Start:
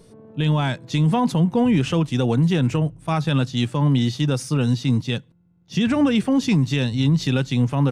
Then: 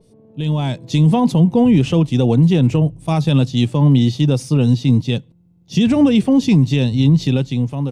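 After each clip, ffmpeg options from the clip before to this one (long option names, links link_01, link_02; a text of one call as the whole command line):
ffmpeg -i in.wav -af "equalizer=frequency=1500:width=1.3:gain=-13,dynaudnorm=framelen=140:gausssize=9:maxgain=11dB,adynamicequalizer=threshold=0.0126:dfrequency=4100:dqfactor=0.7:tfrequency=4100:tqfactor=0.7:attack=5:release=100:ratio=0.375:range=3.5:mode=cutabove:tftype=highshelf,volume=-2.5dB" out.wav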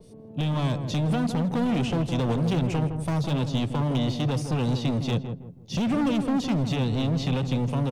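ffmpeg -i in.wav -filter_complex "[0:a]acrossover=split=430|870|2900[link_01][link_02][link_03][link_04];[link_01]acompressor=threshold=-24dB:ratio=4[link_05];[link_02]acompressor=threshold=-32dB:ratio=4[link_06];[link_03]acompressor=threshold=-42dB:ratio=4[link_07];[link_04]acompressor=threshold=-45dB:ratio=4[link_08];[link_05][link_06][link_07][link_08]amix=inputs=4:normalize=0,volume=25dB,asoftclip=hard,volume=-25dB,asplit=2[link_09][link_10];[link_10]adelay=162,lowpass=frequency=880:poles=1,volume=-6.5dB,asplit=2[link_11][link_12];[link_12]adelay=162,lowpass=frequency=880:poles=1,volume=0.36,asplit=2[link_13][link_14];[link_14]adelay=162,lowpass=frequency=880:poles=1,volume=0.36,asplit=2[link_15][link_16];[link_16]adelay=162,lowpass=frequency=880:poles=1,volume=0.36[link_17];[link_11][link_13][link_15][link_17]amix=inputs=4:normalize=0[link_18];[link_09][link_18]amix=inputs=2:normalize=0,volume=2.5dB" out.wav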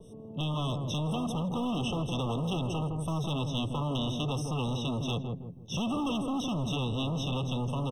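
ffmpeg -i in.wav -filter_complex "[0:a]acrossover=split=1200[link_01][link_02];[link_01]asoftclip=type=tanh:threshold=-29.5dB[link_03];[link_03][link_02]amix=inputs=2:normalize=0,afftfilt=real='re*eq(mod(floor(b*sr/1024/1300),2),0)':imag='im*eq(mod(floor(b*sr/1024/1300),2),0)':win_size=1024:overlap=0.75" out.wav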